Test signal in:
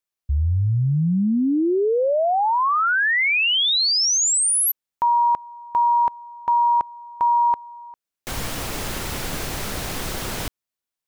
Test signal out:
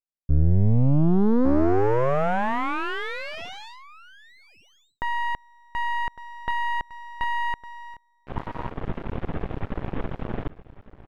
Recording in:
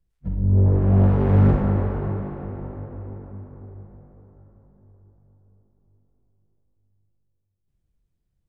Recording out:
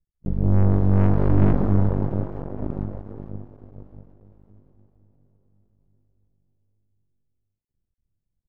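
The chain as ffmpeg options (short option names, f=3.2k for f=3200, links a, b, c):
-filter_complex "[0:a]aresample=8000,asoftclip=type=tanh:threshold=-16dB,aresample=44100,lowpass=2k,tiltshelf=f=820:g=6.5,asplit=2[a][b];[b]aecho=0:1:1157:0.282[c];[a][c]amix=inputs=2:normalize=0,aeval=exprs='0.398*(cos(1*acos(clip(val(0)/0.398,-1,1)))-cos(1*PI/2))+0.0891*(cos(3*acos(clip(val(0)/0.398,-1,1)))-cos(3*PI/2))+0.0398*(cos(6*acos(clip(val(0)/0.398,-1,1)))-cos(6*PI/2))+0.00562*(cos(7*acos(clip(val(0)/0.398,-1,1)))-cos(7*PI/2))':c=same,aeval=exprs='max(val(0),0)':c=same,volume=1.5dB"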